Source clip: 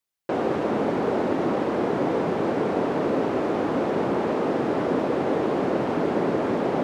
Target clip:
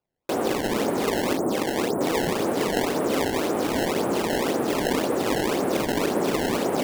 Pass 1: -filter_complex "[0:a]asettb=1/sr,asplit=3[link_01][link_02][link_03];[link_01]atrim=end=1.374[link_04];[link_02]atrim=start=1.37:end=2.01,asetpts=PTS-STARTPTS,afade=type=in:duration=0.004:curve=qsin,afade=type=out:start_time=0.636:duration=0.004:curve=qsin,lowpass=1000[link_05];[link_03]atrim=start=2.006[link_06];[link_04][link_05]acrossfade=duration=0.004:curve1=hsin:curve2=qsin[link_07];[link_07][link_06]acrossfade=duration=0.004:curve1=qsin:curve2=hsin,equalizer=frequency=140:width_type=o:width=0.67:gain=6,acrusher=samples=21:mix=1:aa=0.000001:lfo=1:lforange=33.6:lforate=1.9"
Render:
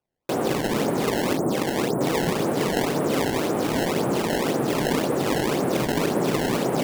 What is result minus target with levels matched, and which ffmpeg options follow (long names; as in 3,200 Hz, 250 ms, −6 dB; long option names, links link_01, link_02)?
125 Hz band +5.0 dB
-filter_complex "[0:a]asettb=1/sr,asplit=3[link_01][link_02][link_03];[link_01]atrim=end=1.374[link_04];[link_02]atrim=start=1.37:end=2.01,asetpts=PTS-STARTPTS,afade=type=in:duration=0.004:curve=qsin,afade=type=out:start_time=0.636:duration=0.004:curve=qsin,lowpass=1000[link_05];[link_03]atrim=start=2.006[link_06];[link_04][link_05]acrossfade=duration=0.004:curve1=hsin:curve2=qsin[link_07];[link_07][link_06]acrossfade=duration=0.004:curve1=qsin:curve2=hsin,equalizer=frequency=140:width_type=o:width=0.67:gain=-4,acrusher=samples=21:mix=1:aa=0.000001:lfo=1:lforange=33.6:lforate=1.9"